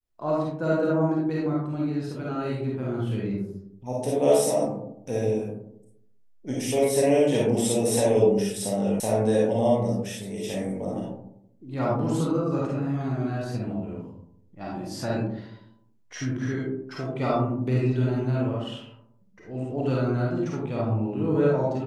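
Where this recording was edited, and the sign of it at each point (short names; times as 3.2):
9 sound cut off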